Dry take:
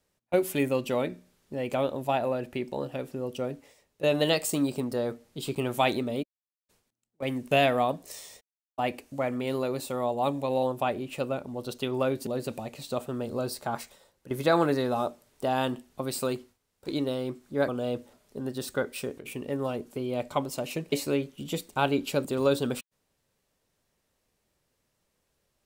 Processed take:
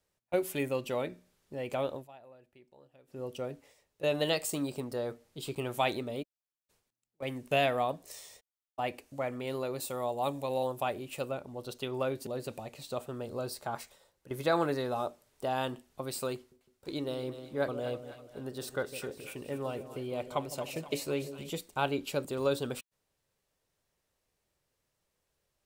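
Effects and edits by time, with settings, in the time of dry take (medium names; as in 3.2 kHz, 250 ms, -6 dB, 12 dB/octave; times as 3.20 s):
1.95–3.20 s: dip -21 dB, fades 0.13 s
9.80–11.31 s: treble shelf 6.2 kHz +8 dB
16.36–21.50 s: two-band feedback delay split 670 Hz, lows 156 ms, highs 248 ms, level -11 dB
whole clip: peaking EQ 230 Hz -5 dB 0.79 oct; trim -4.5 dB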